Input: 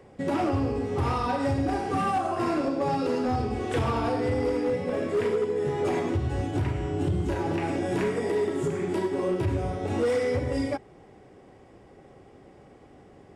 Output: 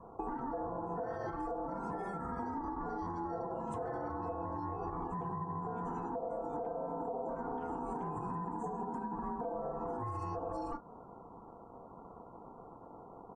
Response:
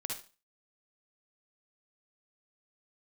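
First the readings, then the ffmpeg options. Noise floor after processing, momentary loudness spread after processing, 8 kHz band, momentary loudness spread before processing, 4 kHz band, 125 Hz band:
−53 dBFS, 14 LU, below −20 dB, 3 LU, below −25 dB, −15.5 dB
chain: -filter_complex "[0:a]firequalizer=gain_entry='entry(120,0);entry(1600,-19);entry(6700,-4)':delay=0.05:min_phase=1,asoftclip=type=tanh:threshold=-23dB,asplit=2[link_01][link_02];[link_02]adelay=35,volume=-13dB[link_03];[link_01][link_03]amix=inputs=2:normalize=0,acrossover=split=370[link_04][link_05];[link_05]acompressor=threshold=-36dB:ratio=6[link_06];[link_04][link_06]amix=inputs=2:normalize=0,aeval=exprs='val(0)*sin(2*PI*590*n/s)':channel_layout=same,alimiter=level_in=5dB:limit=-24dB:level=0:latency=1:release=165,volume=-5dB,acompressor=threshold=-41dB:ratio=4,afftdn=noise_reduction=21:noise_floor=-66,volume=5dB"

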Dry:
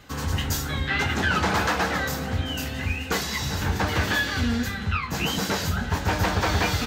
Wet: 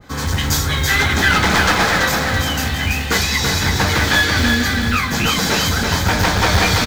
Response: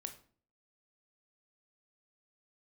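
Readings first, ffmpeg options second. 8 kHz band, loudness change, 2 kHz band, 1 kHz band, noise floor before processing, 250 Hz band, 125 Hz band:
+11.5 dB, +9.5 dB, +10.5 dB, +8.0 dB, −32 dBFS, +7.5 dB, +7.5 dB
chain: -af "highshelf=frequency=7800:gain=-5.5,bandreject=frequency=2800:width=7,aeval=exprs='clip(val(0),-1,0.0794)':channel_layout=same,acrusher=bits=7:mode=log:mix=0:aa=0.000001,aecho=1:1:332|664|996|1328|1660:0.631|0.265|0.111|0.0467|0.0196,adynamicequalizer=threshold=0.00891:dfrequency=1600:dqfactor=0.7:tfrequency=1600:tqfactor=0.7:attack=5:release=100:ratio=0.375:range=3:mode=boostabove:tftype=highshelf,volume=6.5dB"

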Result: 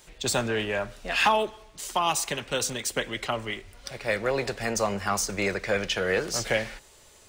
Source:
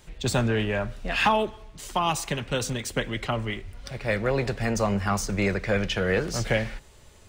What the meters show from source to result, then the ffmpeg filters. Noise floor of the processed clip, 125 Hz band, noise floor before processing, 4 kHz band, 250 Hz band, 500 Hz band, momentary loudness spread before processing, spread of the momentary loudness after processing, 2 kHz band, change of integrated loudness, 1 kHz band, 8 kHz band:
−55 dBFS, −9.0 dB, −52 dBFS, +2.0 dB, −5.5 dB, −1.0 dB, 9 LU, 10 LU, +0.5 dB, −0.5 dB, 0.0 dB, +4.5 dB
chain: -af "bass=frequency=250:gain=-10,treble=frequency=4000:gain=5"

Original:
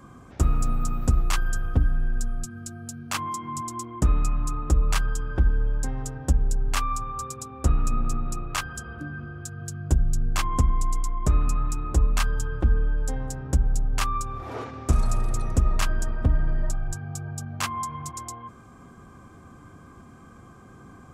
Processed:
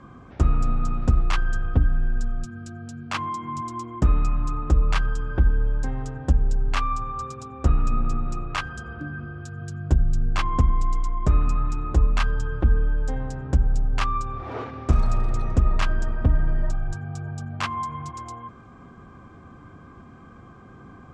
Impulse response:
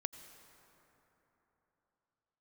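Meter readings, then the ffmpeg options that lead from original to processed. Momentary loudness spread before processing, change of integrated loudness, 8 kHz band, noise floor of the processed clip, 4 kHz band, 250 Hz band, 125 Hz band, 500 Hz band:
11 LU, +1.5 dB, −10.0 dB, −46 dBFS, −1.0 dB, +2.0 dB, +2.0 dB, +2.0 dB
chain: -filter_complex "[0:a]lowpass=3800,asplit=2[link_01][link_02];[1:a]atrim=start_sample=2205,atrim=end_sample=4410[link_03];[link_02][link_03]afir=irnorm=-1:irlink=0,volume=-10.5dB[link_04];[link_01][link_04]amix=inputs=2:normalize=0"

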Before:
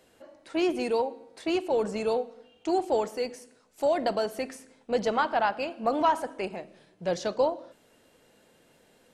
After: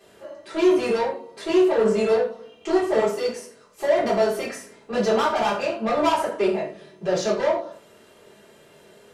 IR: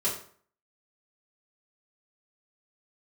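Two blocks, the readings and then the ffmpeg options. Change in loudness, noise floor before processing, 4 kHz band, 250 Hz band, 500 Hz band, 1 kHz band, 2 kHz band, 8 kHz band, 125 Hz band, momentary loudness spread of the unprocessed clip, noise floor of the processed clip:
+6.0 dB, −63 dBFS, +6.0 dB, +7.0 dB, +7.0 dB, +3.0 dB, +5.5 dB, +8.0 dB, +8.0 dB, 11 LU, −53 dBFS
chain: -filter_complex "[0:a]equalizer=frequency=1400:width=0.32:gain=3.5,asoftclip=type=tanh:threshold=-25dB[link_01];[1:a]atrim=start_sample=2205,afade=type=out:start_time=0.17:duration=0.01,atrim=end_sample=7938[link_02];[link_01][link_02]afir=irnorm=-1:irlink=0"

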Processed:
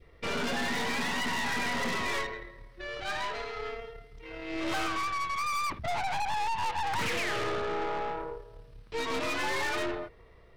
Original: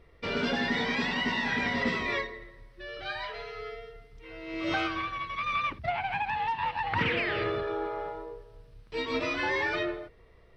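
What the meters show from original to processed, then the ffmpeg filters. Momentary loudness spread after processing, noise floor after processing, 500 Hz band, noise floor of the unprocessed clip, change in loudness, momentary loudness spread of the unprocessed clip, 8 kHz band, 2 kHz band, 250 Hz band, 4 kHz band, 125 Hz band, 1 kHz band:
12 LU, −55 dBFS, −1.5 dB, −57 dBFS, −1.5 dB, 15 LU, can't be measured, −2.0 dB, −3.5 dB, 0.0 dB, −3.0 dB, +0.5 dB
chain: -af "adynamicequalizer=threshold=0.00708:dfrequency=1000:dqfactor=1.3:tfrequency=1000:tqfactor=1.3:attack=5:release=100:ratio=0.375:range=2.5:mode=boostabove:tftype=bell,aeval=exprs='(tanh(56.2*val(0)+0.7)-tanh(0.7))/56.2':channel_layout=same,volume=5.5dB"

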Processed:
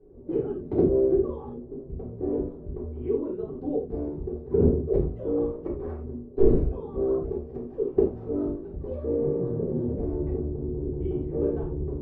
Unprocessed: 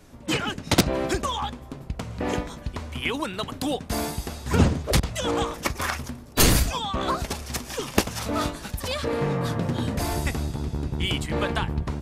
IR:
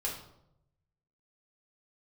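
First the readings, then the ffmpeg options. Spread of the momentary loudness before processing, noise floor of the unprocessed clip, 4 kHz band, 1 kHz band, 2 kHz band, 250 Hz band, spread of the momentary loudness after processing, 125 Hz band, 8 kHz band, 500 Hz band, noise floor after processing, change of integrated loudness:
9 LU, −42 dBFS, below −40 dB, −17.0 dB, below −30 dB, 0.0 dB, 13 LU, −4.5 dB, below −40 dB, +4.5 dB, −42 dBFS, −1.5 dB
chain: -filter_complex "[0:a]lowpass=frequency=400:width_type=q:width=4.1[link_01];[1:a]atrim=start_sample=2205,afade=type=out:start_time=0.14:duration=0.01,atrim=end_sample=6615,asetrate=41013,aresample=44100[link_02];[link_01][link_02]afir=irnorm=-1:irlink=0,volume=-8.5dB"

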